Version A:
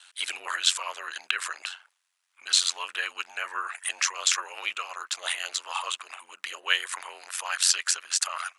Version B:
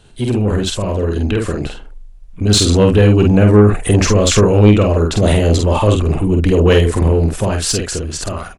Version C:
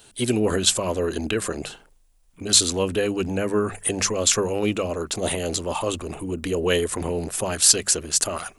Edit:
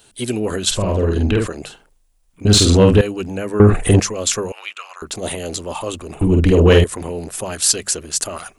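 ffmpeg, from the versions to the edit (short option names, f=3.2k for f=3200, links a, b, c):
-filter_complex "[1:a]asplit=4[a][b][c][d];[2:a]asplit=6[e][f][g][h][i][j];[e]atrim=end=0.712[k];[a]atrim=start=0.708:end=1.472[l];[f]atrim=start=1.468:end=2.452[m];[b]atrim=start=2.448:end=3.012[n];[g]atrim=start=3.008:end=3.602[o];[c]atrim=start=3.598:end=4.002[p];[h]atrim=start=3.998:end=4.522[q];[0:a]atrim=start=4.518:end=5.022[r];[i]atrim=start=5.018:end=6.212[s];[d]atrim=start=6.208:end=6.842[t];[j]atrim=start=6.838[u];[k][l]acrossfade=d=0.004:c1=hsin:c2=hsin[v];[v][m]acrossfade=d=0.004:c1=hsin:c2=hsin[w];[w][n]acrossfade=d=0.004:c1=hsin:c2=hsin[x];[x][o]acrossfade=d=0.004:c1=hsin:c2=hsin[y];[y][p]acrossfade=d=0.004:c1=hsin:c2=hsin[z];[z][q]acrossfade=d=0.004:c1=hsin:c2=hsin[aa];[aa][r]acrossfade=d=0.004:c1=hsin:c2=hsin[ab];[ab][s]acrossfade=d=0.004:c1=hsin:c2=hsin[ac];[ac][t]acrossfade=d=0.004:c1=hsin:c2=hsin[ad];[ad][u]acrossfade=d=0.004:c1=hsin:c2=hsin"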